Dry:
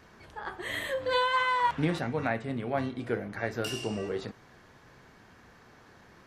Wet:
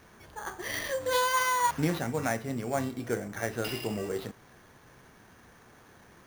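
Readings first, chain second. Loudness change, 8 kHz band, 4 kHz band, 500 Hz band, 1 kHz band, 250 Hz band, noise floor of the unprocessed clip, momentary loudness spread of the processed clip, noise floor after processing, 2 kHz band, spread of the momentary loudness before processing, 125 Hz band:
0.0 dB, +11.5 dB, -0.5 dB, 0.0 dB, 0.0 dB, 0.0 dB, -57 dBFS, 12 LU, -57 dBFS, -0.5 dB, 12 LU, 0.0 dB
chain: sample-rate reducer 7.8 kHz, jitter 0%

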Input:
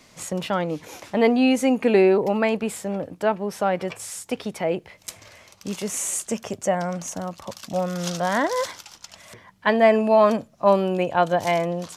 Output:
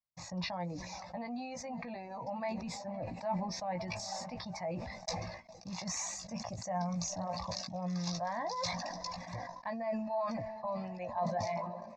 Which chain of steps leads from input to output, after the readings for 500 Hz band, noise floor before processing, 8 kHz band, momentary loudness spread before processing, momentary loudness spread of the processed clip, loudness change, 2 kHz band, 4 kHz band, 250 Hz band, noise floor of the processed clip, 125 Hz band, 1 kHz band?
-18.5 dB, -53 dBFS, -11.0 dB, 15 LU, 7 LU, -16.0 dB, -17.0 dB, -8.0 dB, -16.0 dB, -51 dBFS, -9.0 dB, -12.5 dB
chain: fade out at the end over 1.81 s; low-pass 5.3 kHz 24 dB/octave; peaking EQ 2.5 kHz -11 dB 1.5 oct; echo that smears into a reverb 487 ms, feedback 47%, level -15 dB; reverb removal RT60 1.5 s; gate -49 dBFS, range -50 dB; peak limiter -18 dBFS, peak gain reduction 10 dB; reverse; compression 10:1, threshold -38 dBFS, peak gain reduction 16.5 dB; reverse; peaking EQ 280 Hz -8 dB 1.1 oct; static phaser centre 2.1 kHz, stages 8; doubling 17 ms -6.5 dB; decay stretcher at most 40 dB/s; trim +8 dB

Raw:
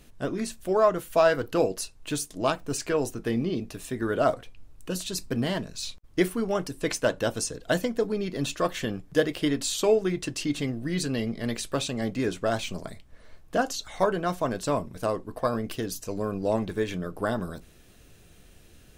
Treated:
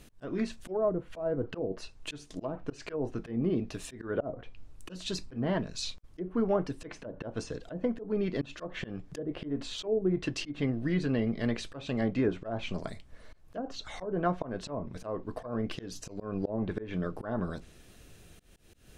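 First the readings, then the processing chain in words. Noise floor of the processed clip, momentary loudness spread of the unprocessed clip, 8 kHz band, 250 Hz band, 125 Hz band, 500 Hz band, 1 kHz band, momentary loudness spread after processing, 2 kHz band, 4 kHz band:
-56 dBFS, 10 LU, -13.5 dB, -3.5 dB, -2.5 dB, -7.5 dB, -10.0 dB, 11 LU, -9.0 dB, -7.5 dB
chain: low-pass that closes with the level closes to 470 Hz, closed at -19.5 dBFS; slow attack 188 ms

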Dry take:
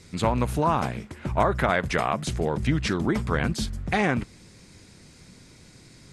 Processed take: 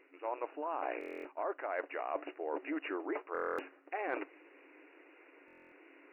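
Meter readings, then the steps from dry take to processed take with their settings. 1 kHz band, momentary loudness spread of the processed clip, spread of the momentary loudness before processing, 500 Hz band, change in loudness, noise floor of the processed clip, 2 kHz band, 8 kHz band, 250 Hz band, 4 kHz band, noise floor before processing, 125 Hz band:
-12.5 dB, 21 LU, 7 LU, -10.5 dB, -14.0 dB, -63 dBFS, -13.5 dB, under -35 dB, -16.5 dB, -23.5 dB, -52 dBFS, under -40 dB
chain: dynamic bell 670 Hz, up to +6 dB, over -38 dBFS, Q 1.3; FFT band-pass 270–2900 Hz; reverse; compression 12:1, threshold -32 dBFS, peak gain reduction 20 dB; reverse; buffer glitch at 0.99/3.33/5.46 s, samples 1024, times 10; trim -2 dB

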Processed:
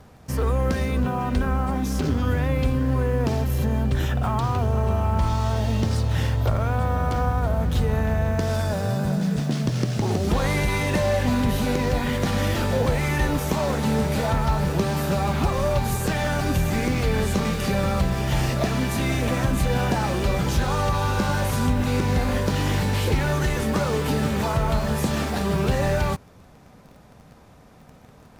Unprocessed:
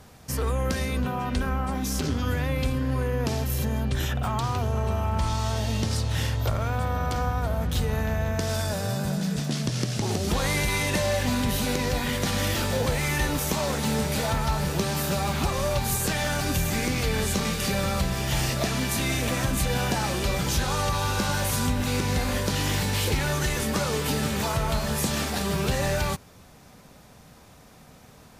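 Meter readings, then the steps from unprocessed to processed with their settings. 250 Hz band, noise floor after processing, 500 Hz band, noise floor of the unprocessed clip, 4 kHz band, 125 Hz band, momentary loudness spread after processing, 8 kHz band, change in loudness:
+4.0 dB, -50 dBFS, +4.0 dB, -51 dBFS, -3.0 dB, +4.0 dB, 2 LU, -5.0 dB, +3.0 dB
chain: treble shelf 2.5 kHz -10.5 dB; in parallel at -10.5 dB: bit crusher 7-bit; on the sum: trim +2 dB

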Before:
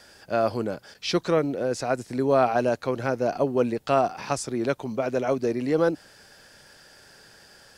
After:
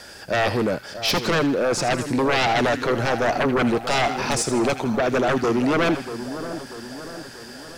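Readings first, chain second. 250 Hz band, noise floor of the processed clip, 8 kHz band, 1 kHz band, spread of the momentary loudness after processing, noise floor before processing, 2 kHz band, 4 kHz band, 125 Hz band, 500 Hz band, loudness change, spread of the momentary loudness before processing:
+5.0 dB, -41 dBFS, +9.5 dB, +4.5 dB, 15 LU, -53 dBFS, +10.5 dB, +10.5 dB, +5.0 dB, +1.5 dB, +3.5 dB, 6 LU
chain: sine folder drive 15 dB, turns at -7.5 dBFS; two-band feedback delay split 1.4 kHz, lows 639 ms, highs 80 ms, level -11 dB; trim -9 dB

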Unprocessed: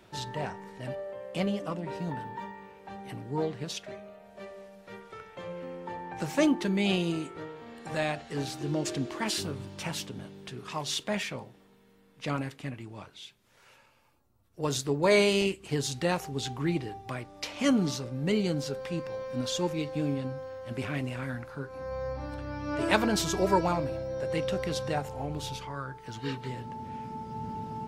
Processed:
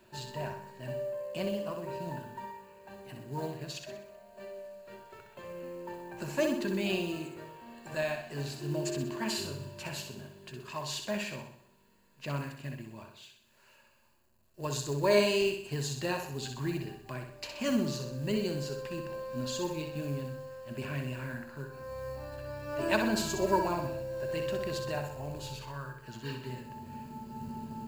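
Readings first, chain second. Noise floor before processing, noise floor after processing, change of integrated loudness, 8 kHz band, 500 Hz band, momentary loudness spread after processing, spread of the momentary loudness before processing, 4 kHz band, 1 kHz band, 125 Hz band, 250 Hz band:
-61 dBFS, -64 dBFS, -3.5 dB, -3.5 dB, -2.0 dB, 17 LU, 17 LU, -4.0 dB, -4.0 dB, -3.0 dB, -5.0 dB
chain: companded quantiser 6-bit; rippled EQ curve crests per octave 1.4, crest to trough 9 dB; flutter echo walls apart 10.8 m, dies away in 0.59 s; trim -6 dB

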